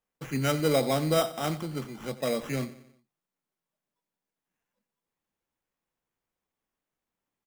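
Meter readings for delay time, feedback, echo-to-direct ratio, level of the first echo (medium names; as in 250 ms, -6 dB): 90 ms, 49%, -15.0 dB, -16.0 dB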